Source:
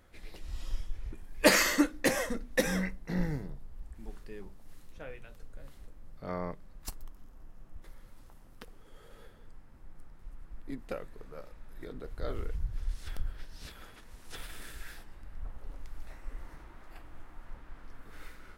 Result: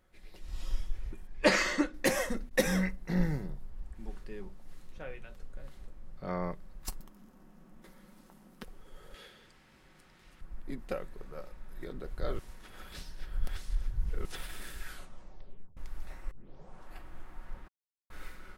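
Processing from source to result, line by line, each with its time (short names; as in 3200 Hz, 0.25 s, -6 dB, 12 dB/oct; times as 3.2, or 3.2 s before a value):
1.27–1.94 air absorption 85 m
2.49–2.99 expander -38 dBFS
3.7–6.42 high shelf 10000 Hz -8.5 dB
7–8.63 resonant low shelf 130 Hz -14 dB, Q 3
9.14–10.41 weighting filter D
12.39–14.25 reverse
14.84 tape stop 0.93 s
16.31 tape start 0.65 s
17.68–18.1 mute
whole clip: AGC gain up to 9 dB; comb 5.4 ms, depth 30%; gain -8 dB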